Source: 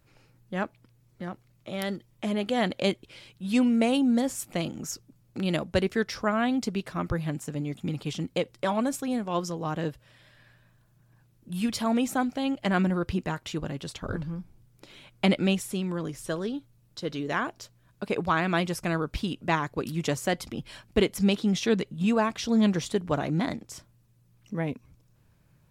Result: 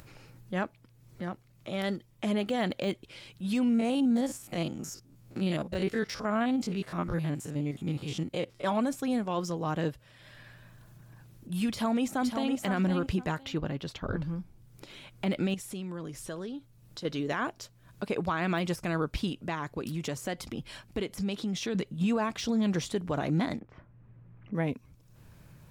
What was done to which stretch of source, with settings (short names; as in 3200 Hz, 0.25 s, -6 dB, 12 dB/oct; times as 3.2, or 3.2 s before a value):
3.64–8.64 stepped spectrum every 50 ms
11.7–12.59 echo throw 0.51 s, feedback 15%, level -7.5 dB
13.43–14.22 bell 8900 Hz -13 dB 0.98 oct
15.54–17.05 compressor 2.5:1, threshold -38 dBFS
19.29–21.75 compressor 3:1, threshold -31 dBFS
23.59–24.55 LPF 2100 Hz 24 dB/oct
whole clip: de-esser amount 80%; limiter -20.5 dBFS; upward compressor, threshold -43 dBFS